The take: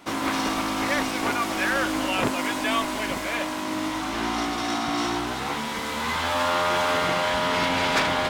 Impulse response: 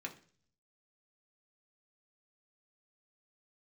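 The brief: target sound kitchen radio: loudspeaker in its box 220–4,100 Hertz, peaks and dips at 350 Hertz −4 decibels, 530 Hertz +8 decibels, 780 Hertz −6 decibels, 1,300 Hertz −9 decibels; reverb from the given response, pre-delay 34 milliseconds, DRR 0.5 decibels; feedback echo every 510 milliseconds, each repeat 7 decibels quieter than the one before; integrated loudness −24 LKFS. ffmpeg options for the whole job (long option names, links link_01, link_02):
-filter_complex "[0:a]aecho=1:1:510|1020|1530|2040|2550:0.447|0.201|0.0905|0.0407|0.0183,asplit=2[link_01][link_02];[1:a]atrim=start_sample=2205,adelay=34[link_03];[link_02][link_03]afir=irnorm=-1:irlink=0,volume=0.5dB[link_04];[link_01][link_04]amix=inputs=2:normalize=0,highpass=220,equalizer=frequency=350:width_type=q:width=4:gain=-4,equalizer=frequency=530:width_type=q:width=4:gain=8,equalizer=frequency=780:width_type=q:width=4:gain=-6,equalizer=frequency=1300:width_type=q:width=4:gain=-9,lowpass=frequency=4100:width=0.5412,lowpass=frequency=4100:width=1.3066,volume=-1dB"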